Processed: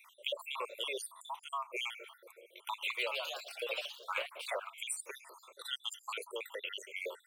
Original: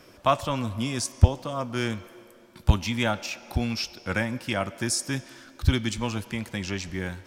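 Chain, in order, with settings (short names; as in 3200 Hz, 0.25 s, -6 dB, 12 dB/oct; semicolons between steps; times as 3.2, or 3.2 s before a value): random spectral dropouts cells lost 69%; Chebyshev high-pass 420 Hz, order 5; compressor 10:1, threshold -37 dBFS, peak gain reduction 13 dB; fixed phaser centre 1100 Hz, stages 8; 2.73–4.75 echoes that change speed 0.17 s, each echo +2 st, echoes 2; gain +5 dB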